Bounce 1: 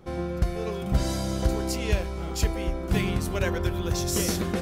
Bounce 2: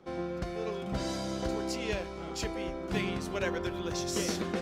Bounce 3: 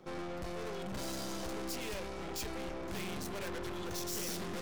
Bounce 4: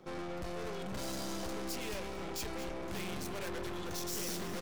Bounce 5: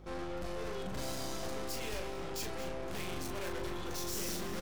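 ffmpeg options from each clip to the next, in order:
-filter_complex "[0:a]acrossover=split=170 7400:gain=0.224 1 0.2[a][b][c];[a][b][c]amix=inputs=3:normalize=0,volume=-3.5dB"
-af "aeval=exprs='(tanh(141*val(0)+0.75)-tanh(0.75))/141':c=same,highshelf=f=9.1k:g=10,volume=4dB"
-af "aecho=1:1:224:0.224"
-filter_complex "[0:a]aeval=exprs='val(0)+0.00251*(sin(2*PI*50*n/s)+sin(2*PI*2*50*n/s)/2+sin(2*PI*3*50*n/s)/3+sin(2*PI*4*50*n/s)/4+sin(2*PI*5*50*n/s)/5)':c=same,asplit=2[a][b];[b]adelay=38,volume=-5dB[c];[a][c]amix=inputs=2:normalize=0,volume=-1dB"

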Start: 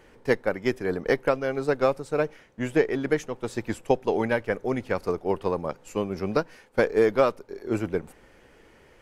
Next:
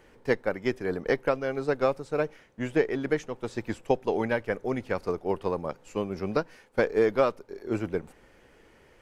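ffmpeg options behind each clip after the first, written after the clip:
-filter_complex "[0:a]acrossover=split=7200[a][b];[b]acompressor=threshold=-60dB:ratio=4:attack=1:release=60[c];[a][c]amix=inputs=2:normalize=0,volume=-2.5dB"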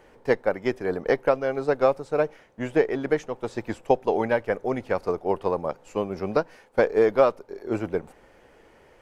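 -af "equalizer=f=710:w=0.92:g=6.5"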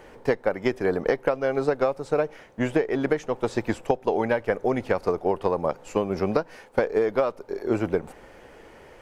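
-af "acompressor=threshold=-25dB:ratio=12,volume=6.5dB"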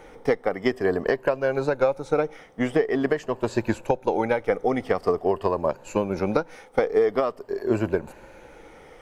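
-af "afftfilt=real='re*pow(10,8/40*sin(2*PI*(1.4*log(max(b,1)*sr/1024/100)/log(2)-(-0.46)*(pts-256)/sr)))':imag='im*pow(10,8/40*sin(2*PI*(1.4*log(max(b,1)*sr/1024/100)/log(2)-(-0.46)*(pts-256)/sr)))':win_size=1024:overlap=0.75"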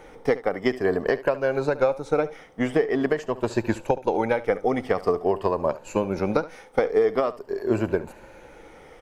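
-af "aecho=1:1:71:0.141"

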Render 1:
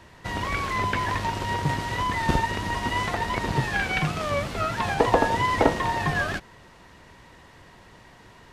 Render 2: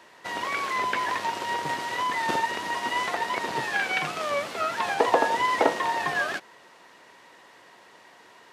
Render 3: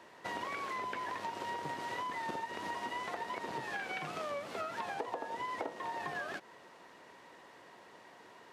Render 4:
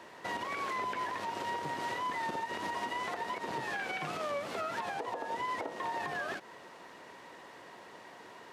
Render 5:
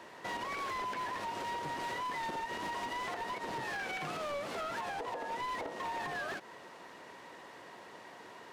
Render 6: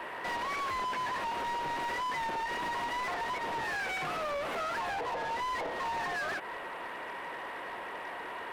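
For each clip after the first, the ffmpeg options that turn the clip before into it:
-af "highpass=380"
-af "tiltshelf=f=1.1k:g=3.5,acompressor=threshold=-32dB:ratio=10,volume=-4dB"
-af "alimiter=level_in=8dB:limit=-24dB:level=0:latency=1:release=75,volume=-8dB,volume=5dB"
-af "asoftclip=type=hard:threshold=-34.5dB"
-filter_complex "[0:a]asuperstop=centerf=5400:order=4:qfactor=0.85,asplit=2[a][b];[b]highpass=f=720:p=1,volume=19dB,asoftclip=type=tanh:threshold=-32dB[c];[a][c]amix=inputs=2:normalize=0,lowpass=f=5.1k:p=1,volume=-6dB,volume=2dB"

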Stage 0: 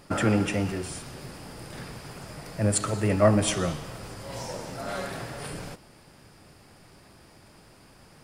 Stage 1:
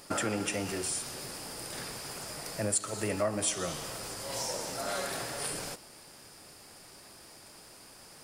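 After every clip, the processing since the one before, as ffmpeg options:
-af "bass=f=250:g=-9,treble=f=4k:g=9,acompressor=threshold=-30dB:ratio=3"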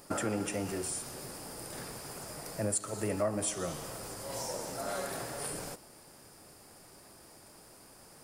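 -af "equalizer=f=3.5k:t=o:w=2.4:g=-7.5"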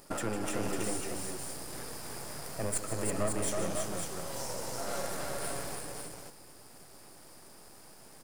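-filter_complex "[0:a]aeval=exprs='if(lt(val(0),0),0.251*val(0),val(0))':c=same,asplit=2[a][b];[b]aecho=0:1:153|326|549:0.299|0.668|0.562[c];[a][c]amix=inputs=2:normalize=0,volume=1.5dB"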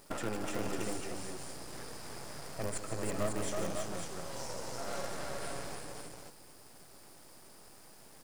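-filter_complex "[0:a]acrossover=split=8300[a][b];[b]acompressor=threshold=-56dB:ratio=4:attack=1:release=60[c];[a][c]amix=inputs=2:normalize=0,acrusher=bits=7:dc=4:mix=0:aa=0.000001,volume=-2dB"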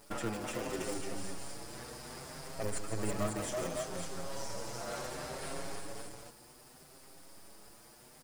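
-filter_complex "[0:a]asplit=2[a][b];[b]adelay=6.7,afreqshift=0.66[c];[a][c]amix=inputs=2:normalize=1,volume=3dB"

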